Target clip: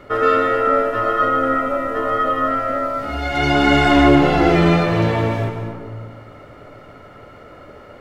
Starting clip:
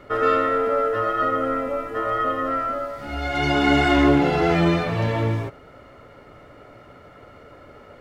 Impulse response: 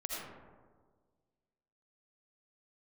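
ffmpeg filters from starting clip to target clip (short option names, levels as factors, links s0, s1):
-filter_complex "[0:a]asplit=2[s0][s1];[1:a]atrim=start_sample=2205,adelay=147[s2];[s1][s2]afir=irnorm=-1:irlink=0,volume=0.447[s3];[s0][s3]amix=inputs=2:normalize=0,volume=1.5"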